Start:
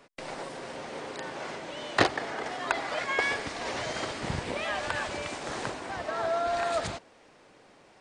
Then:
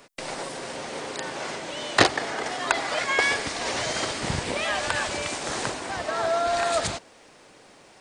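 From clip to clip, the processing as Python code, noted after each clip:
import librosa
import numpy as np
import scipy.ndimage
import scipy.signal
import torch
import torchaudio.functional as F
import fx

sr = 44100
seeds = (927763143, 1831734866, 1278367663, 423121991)

y = fx.high_shelf(x, sr, hz=4600.0, db=10.0)
y = y * librosa.db_to_amplitude(4.0)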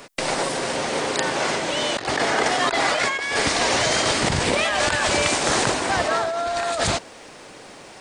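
y = fx.over_compress(x, sr, threshold_db=-29.0, ratio=-1.0)
y = y * librosa.db_to_amplitude(7.5)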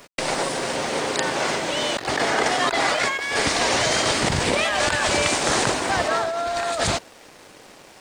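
y = np.sign(x) * np.maximum(np.abs(x) - 10.0 ** (-47.5 / 20.0), 0.0)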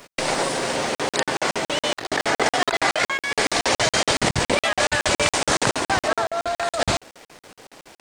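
y = fx.buffer_crackle(x, sr, first_s=0.95, period_s=0.14, block=2048, kind='zero')
y = y * librosa.db_to_amplitude(1.5)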